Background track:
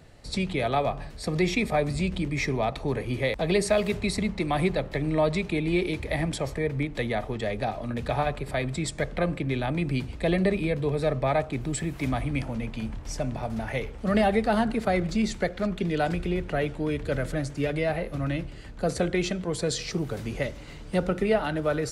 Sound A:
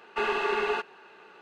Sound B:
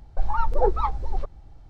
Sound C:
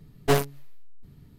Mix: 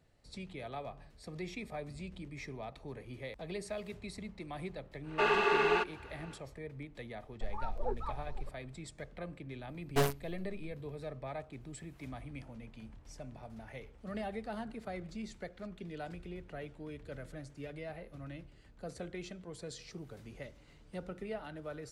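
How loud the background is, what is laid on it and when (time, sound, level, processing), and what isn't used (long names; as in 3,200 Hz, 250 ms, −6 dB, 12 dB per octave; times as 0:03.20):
background track −17.5 dB
0:05.02: mix in A −1 dB, fades 0.10 s
0:07.24: mix in B −15.5 dB
0:09.68: mix in C −10.5 dB + leveller curve on the samples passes 1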